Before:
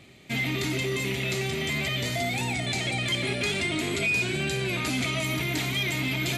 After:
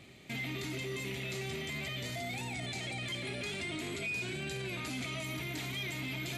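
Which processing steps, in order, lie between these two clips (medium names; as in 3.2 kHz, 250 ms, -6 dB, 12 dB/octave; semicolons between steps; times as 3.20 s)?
peak limiter -28 dBFS, peak gain reduction 9.5 dB; trim -3 dB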